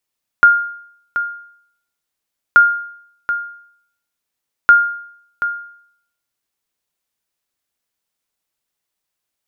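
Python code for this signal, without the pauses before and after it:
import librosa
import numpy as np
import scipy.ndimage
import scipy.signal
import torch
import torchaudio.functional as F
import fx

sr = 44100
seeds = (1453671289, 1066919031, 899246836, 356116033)

y = fx.sonar_ping(sr, hz=1410.0, decay_s=0.65, every_s=2.13, pings=3, echo_s=0.73, echo_db=-11.0, level_db=-1.5)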